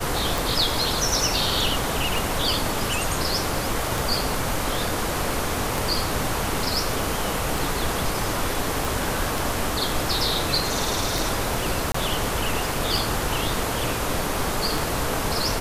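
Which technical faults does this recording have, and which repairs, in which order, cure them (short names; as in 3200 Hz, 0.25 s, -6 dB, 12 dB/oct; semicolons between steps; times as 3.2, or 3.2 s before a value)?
tick 33 1/3 rpm
8.85 pop
11.92–11.94 gap 24 ms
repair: de-click; interpolate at 11.92, 24 ms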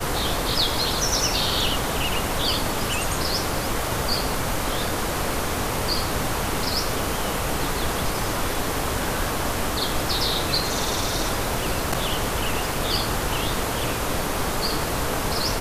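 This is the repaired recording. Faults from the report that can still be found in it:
none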